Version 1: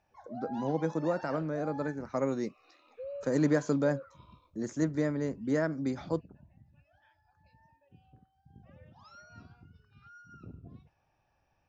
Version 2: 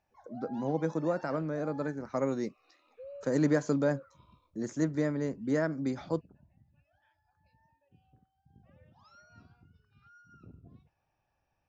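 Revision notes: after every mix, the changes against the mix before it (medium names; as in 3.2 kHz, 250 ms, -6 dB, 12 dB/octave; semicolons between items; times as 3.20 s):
background -5.0 dB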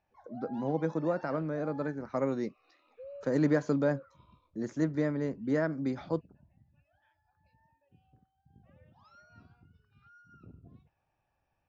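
master: add low-pass 4.5 kHz 12 dB/octave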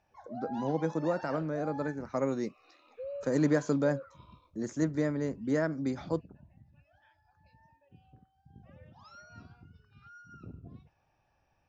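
background +6.0 dB; master: remove low-pass 4.5 kHz 12 dB/octave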